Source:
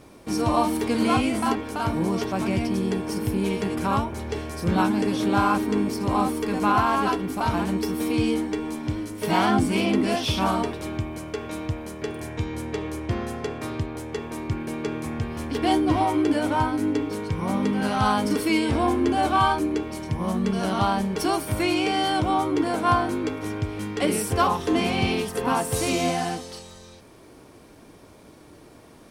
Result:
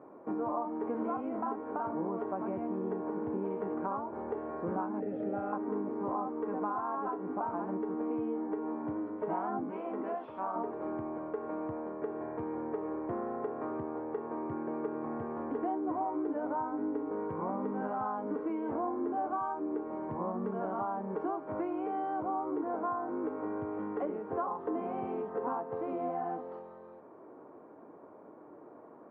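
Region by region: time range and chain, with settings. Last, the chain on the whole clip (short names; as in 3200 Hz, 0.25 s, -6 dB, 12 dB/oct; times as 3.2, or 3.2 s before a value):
5–5.53 high shelf 5500 Hz -9.5 dB + fixed phaser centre 2600 Hz, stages 4 + comb 1.6 ms, depth 44%
9.7–10.56 low shelf 420 Hz -11 dB + notches 50/100/150/200/250/300/350/400 Hz
whole clip: HPF 330 Hz 12 dB/oct; compressor, threshold -31 dBFS; LPF 1200 Hz 24 dB/oct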